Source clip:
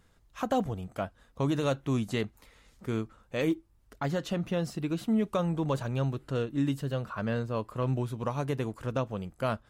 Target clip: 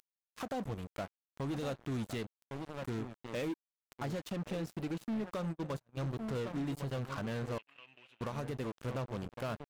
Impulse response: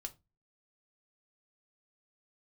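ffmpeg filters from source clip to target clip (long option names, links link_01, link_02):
-filter_complex "[0:a]asplit=2[link_01][link_02];[link_02]adelay=1108,volume=-11dB,highshelf=frequency=4000:gain=-24.9[link_03];[link_01][link_03]amix=inputs=2:normalize=0,acompressor=mode=upward:threshold=-45dB:ratio=2.5,aeval=exprs='sgn(val(0))*max(abs(val(0))-0.0112,0)':channel_layout=same,asplit=3[link_04][link_05][link_06];[link_04]afade=type=out:start_time=5.51:duration=0.02[link_07];[link_05]agate=range=-49dB:threshold=-30dB:ratio=16:detection=peak,afade=type=in:start_time=5.51:duration=0.02,afade=type=out:start_time=6:duration=0.02[link_08];[link_06]afade=type=in:start_time=6:duration=0.02[link_09];[link_07][link_08][link_09]amix=inputs=3:normalize=0,acompressor=threshold=-28dB:ratio=6,alimiter=level_in=4dB:limit=-24dB:level=0:latency=1:release=439,volume=-4dB,asettb=1/sr,asplit=3[link_10][link_11][link_12];[link_10]atrim=end=7.584[link_13];[link_11]atrim=start=7.58:end=8.21,asetpts=PTS-STARTPTS,afade=type=in:duration=0.004:curve=qsin,afade=type=out:start_time=0.626:duration=0.004:curve=qsin,bandpass=frequency=2700:width_type=q:width=7:csg=0[link_14];[link_12]atrim=start=8.206[link_15];[link_13][link_14]acrossfade=duration=0.004:curve1=hsin:curve2=qsin[link_16];[link_16][link_15]acrossfade=duration=0.004:curve1=qsin:curve2=hsin,asoftclip=type=tanh:threshold=-39dB,volume=7dB"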